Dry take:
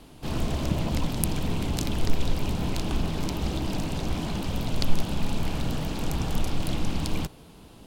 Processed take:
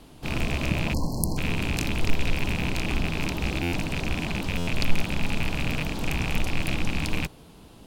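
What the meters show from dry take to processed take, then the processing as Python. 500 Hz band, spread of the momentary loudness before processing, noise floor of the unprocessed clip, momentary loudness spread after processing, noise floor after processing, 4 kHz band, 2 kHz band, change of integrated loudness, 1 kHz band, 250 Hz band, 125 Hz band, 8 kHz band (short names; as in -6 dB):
0.0 dB, 3 LU, -49 dBFS, 2 LU, -49 dBFS, +2.5 dB, +10.0 dB, +1.5 dB, +0.5 dB, 0.0 dB, 0.0 dB, +0.5 dB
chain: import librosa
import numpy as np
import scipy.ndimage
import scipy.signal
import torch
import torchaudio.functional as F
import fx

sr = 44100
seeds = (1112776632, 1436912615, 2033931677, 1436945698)

y = fx.rattle_buzz(x, sr, strikes_db=-29.0, level_db=-18.0)
y = fx.spec_erase(y, sr, start_s=0.94, length_s=0.43, low_hz=1100.0, high_hz=4100.0)
y = fx.buffer_glitch(y, sr, at_s=(3.62, 4.57), block=512, repeats=8)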